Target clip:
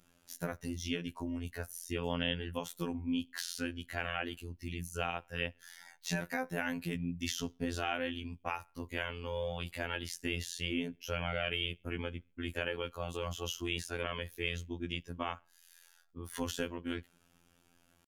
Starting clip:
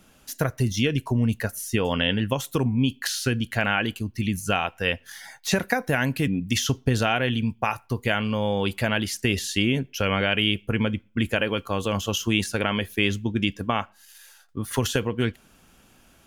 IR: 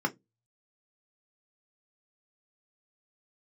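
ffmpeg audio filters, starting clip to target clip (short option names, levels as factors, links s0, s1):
-af "atempo=0.9,afftfilt=real='hypot(re,im)*cos(PI*b)':imag='0':win_size=2048:overlap=0.75,volume=0.355"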